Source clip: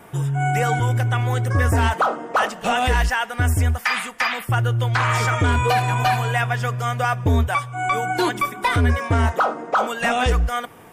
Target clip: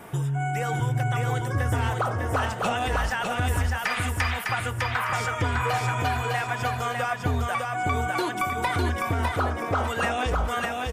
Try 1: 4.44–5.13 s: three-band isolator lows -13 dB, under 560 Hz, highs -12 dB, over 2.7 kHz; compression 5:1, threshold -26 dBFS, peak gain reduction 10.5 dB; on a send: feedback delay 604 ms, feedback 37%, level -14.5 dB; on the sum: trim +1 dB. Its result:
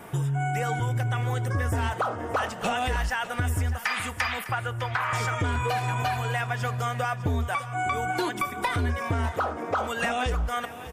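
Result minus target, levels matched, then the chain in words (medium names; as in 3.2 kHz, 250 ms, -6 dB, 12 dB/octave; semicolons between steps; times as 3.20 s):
echo-to-direct -11.5 dB
4.44–5.13 s: three-band isolator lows -13 dB, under 560 Hz, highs -12 dB, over 2.7 kHz; compression 5:1, threshold -26 dBFS, peak gain reduction 10.5 dB; on a send: feedback delay 604 ms, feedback 37%, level -3 dB; on the sum: trim +1 dB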